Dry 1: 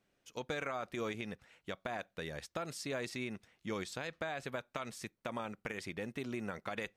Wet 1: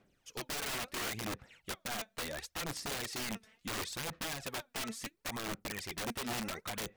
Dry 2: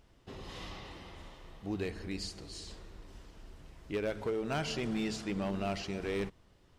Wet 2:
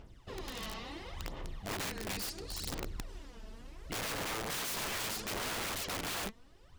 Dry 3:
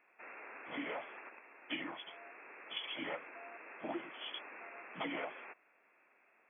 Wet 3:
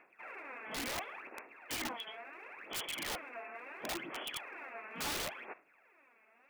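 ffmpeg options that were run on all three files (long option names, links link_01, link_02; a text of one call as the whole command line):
ffmpeg -i in.wav -af "aphaser=in_gain=1:out_gain=1:delay=4.6:decay=0.67:speed=0.72:type=sinusoidal,aeval=exprs='(mod(47.3*val(0)+1,2)-1)/47.3':channel_layout=same,volume=1dB" out.wav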